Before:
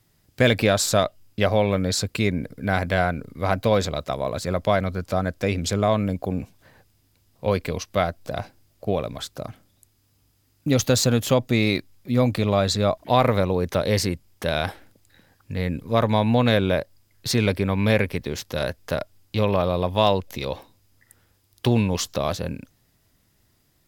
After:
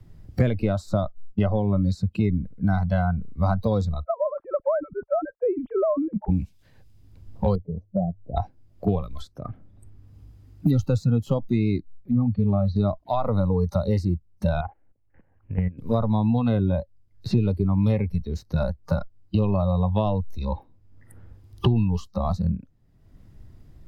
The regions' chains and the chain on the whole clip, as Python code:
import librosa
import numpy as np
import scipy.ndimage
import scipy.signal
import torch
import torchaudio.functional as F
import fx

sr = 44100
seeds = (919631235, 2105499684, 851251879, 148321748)

y = fx.chain(x, sr, fx.sine_speech(),
    fx.lowpass(hz=1500.0, slope=24), at=(4.04, 6.29))
y = fx.chain(y, sr, fx.cheby2_lowpass(hz=1200.0, order=4, stop_db=40),
    fx.low_shelf(hz=110.0, db=-11.0),
    fx.hum_notches(base_hz=50, count=2), at=(7.55, 8.37))
y = fx.chain(y, sr, fx.spacing_loss(db_at_10k=38),
    fx.notch_comb(f0_hz=330.0),
    fx.doppler_dist(depth_ms=0.15), at=(12.11, 12.76))
y = fx.chain(y, sr, fx.cheby_ripple(hz=3000.0, ripple_db=3),
    fx.peak_eq(hz=190.0, db=-6.0, octaves=1.7),
    fx.level_steps(step_db=15), at=(14.61, 15.78))
y = fx.noise_reduce_blind(y, sr, reduce_db=19)
y = fx.tilt_eq(y, sr, slope=-4.0)
y = fx.band_squash(y, sr, depth_pct=100)
y = y * 10.0 ** (-7.0 / 20.0)